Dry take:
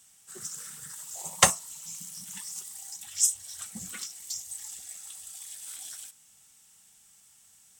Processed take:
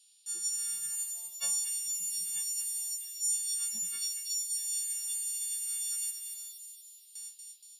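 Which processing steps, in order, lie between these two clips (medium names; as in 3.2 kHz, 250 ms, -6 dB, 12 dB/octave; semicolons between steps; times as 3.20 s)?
partials quantised in pitch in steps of 4 st; gate with hold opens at -36 dBFS; high-pass 270 Hz 6 dB/octave; tilt EQ -2 dB/octave; reverse; compression 16:1, threshold -38 dBFS, peak gain reduction 29.5 dB; reverse; band noise 2.4–5 kHz -79 dBFS; high-order bell 6.1 kHz +14 dB 2.3 oct; on a send: feedback echo behind a high-pass 236 ms, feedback 55%, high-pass 2.8 kHz, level -3.5 dB; on the sum: trim -5 dB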